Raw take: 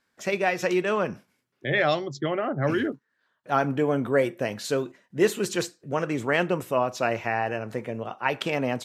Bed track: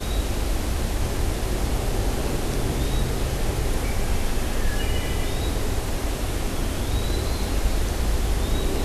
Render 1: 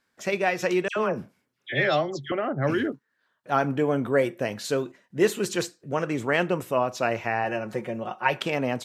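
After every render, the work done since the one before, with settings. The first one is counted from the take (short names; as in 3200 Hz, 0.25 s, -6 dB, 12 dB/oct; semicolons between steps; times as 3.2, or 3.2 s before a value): 0.88–2.32 dispersion lows, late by 84 ms, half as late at 1800 Hz; 7.44–8.4 comb 5.5 ms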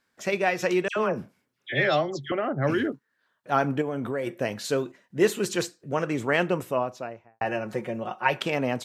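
3.81–4.27 compressor, threshold -25 dBFS; 6.53–7.41 studio fade out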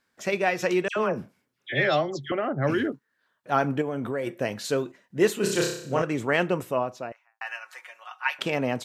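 5.38–6.02 flutter echo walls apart 5.3 m, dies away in 0.61 s; 7.12–8.39 HPF 1100 Hz 24 dB/oct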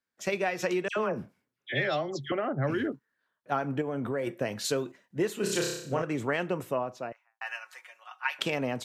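compressor 10:1, threshold -25 dBFS, peak gain reduction 10.5 dB; three-band expander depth 40%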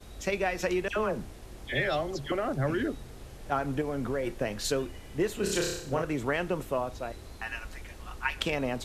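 add bed track -21 dB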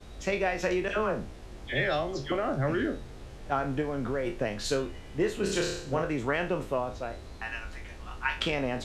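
spectral trails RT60 0.31 s; air absorption 54 m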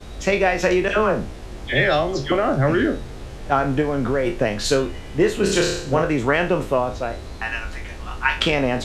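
gain +10 dB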